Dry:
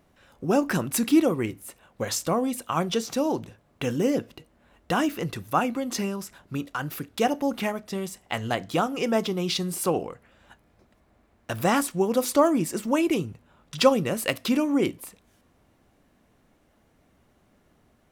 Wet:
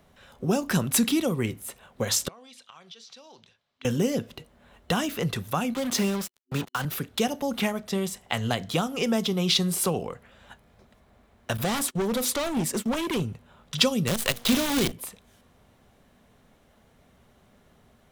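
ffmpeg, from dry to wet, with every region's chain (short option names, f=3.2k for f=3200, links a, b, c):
-filter_complex "[0:a]asettb=1/sr,asplit=3[a][b][c];[a]atrim=end=2.284[d];[b]atrim=start=2.28:end=3.85,asetpts=PTS-STARTPTS,afade=t=in:d=0.004:c=qsin,afade=t=out:st=1.566:d=0.004:c=qsin,bandpass=f=4.5k:t=q:w=1.6,aemphasis=mode=reproduction:type=bsi,acompressor=threshold=-49dB:ratio=6:attack=3.2:release=140:knee=1:detection=peak[e];[c]atrim=start=3.846[f];[d][e]acrossfade=d=0.004:c1=hsin:c2=qsin[g];[g][f]acrossfade=d=0.004:c1=qsin:c2=hsin,asettb=1/sr,asplit=3[h][i][j];[h]atrim=end=5.744[k];[i]atrim=start=5.74:end=6.85,asetpts=PTS-STARTPTS,afade=t=in:d=0.004:c=qsin,afade=t=out:st=1.106:d=0.004:c=qsin,highpass=f=72:w=0.5412,highpass=f=72:w=1.3066,acrusher=bits=5:mix=0:aa=0.5[l];[j]atrim=start=6.846[m];[k][l]acrossfade=d=0.004:c1=hsin:c2=qsin[n];[n][m]acrossfade=d=0.004:c1=qsin:c2=hsin,asettb=1/sr,asplit=3[o][p][q];[o]atrim=end=11.574[r];[p]atrim=start=11.57:end=13.27,asetpts=PTS-STARTPTS,afade=t=in:d=0.004:c=qsin,afade=t=out:st=1.696:d=0.004:c=qsin,agate=range=-23dB:threshold=-37dB:ratio=16:release=100:detection=peak,asoftclip=type=hard:threshold=-24.5dB[s];[q]atrim=start=13.266[t];[r][s]acrossfade=d=0.004:c1=hsin:c2=qsin[u];[u][t]acrossfade=d=0.004:c1=qsin:c2=hsin,asettb=1/sr,asplit=3[v][w][x];[v]atrim=end=14.074[y];[w]atrim=start=14.07:end=14.92,asetpts=PTS-STARTPTS,afade=t=in:d=0.004:c=qsin,afade=t=out:st=0.846:d=0.004:c=qsin,bandreject=f=237.8:t=h:w=4,bandreject=f=475.6:t=h:w=4,bandreject=f=713.4:t=h:w=4,bandreject=f=951.2:t=h:w=4,bandreject=f=1.189k:t=h:w=4,bandreject=f=1.4268k:t=h:w=4,acrusher=bits=5:dc=4:mix=0:aa=0.000001[z];[x]atrim=start=14.916[aa];[y][z]acrossfade=d=0.004:c1=hsin:c2=qsin[ab];[ab][aa]acrossfade=d=0.004:c1=qsin:c2=hsin,superequalizer=6b=0.501:13b=1.41,acrossover=split=240|3000[ac][ad][ae];[ad]acompressor=threshold=-30dB:ratio=6[af];[ac][af][ae]amix=inputs=3:normalize=0,volume=4dB"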